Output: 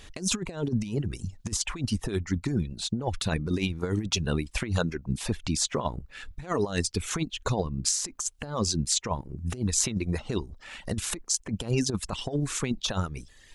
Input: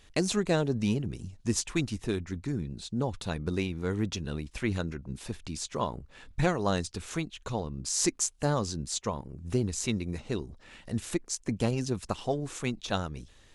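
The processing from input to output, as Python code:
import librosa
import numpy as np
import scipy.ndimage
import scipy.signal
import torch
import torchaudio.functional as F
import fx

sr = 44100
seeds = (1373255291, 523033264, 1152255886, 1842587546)

y = fx.dereverb_blind(x, sr, rt60_s=0.89)
y = fx.over_compress(y, sr, threshold_db=-33.0, ratio=-0.5)
y = y * librosa.db_to_amplitude(6.5)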